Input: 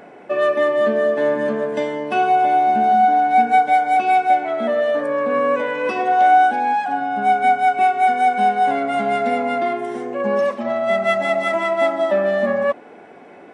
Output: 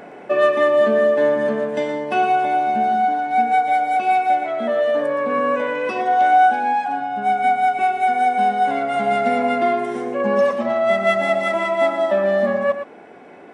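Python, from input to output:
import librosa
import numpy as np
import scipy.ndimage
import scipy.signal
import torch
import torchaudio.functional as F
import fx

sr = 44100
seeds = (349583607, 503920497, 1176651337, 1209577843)

y = x + 10.0 ** (-9.5 / 20.0) * np.pad(x, (int(117 * sr / 1000.0), 0))[:len(x)]
y = fx.rider(y, sr, range_db=10, speed_s=2.0)
y = F.gain(torch.from_numpy(y), -1.5).numpy()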